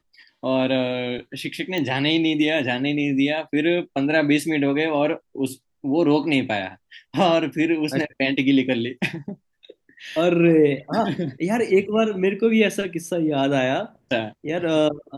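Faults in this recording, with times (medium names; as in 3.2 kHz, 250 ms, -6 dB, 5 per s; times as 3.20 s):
1.78 s: pop -14 dBFS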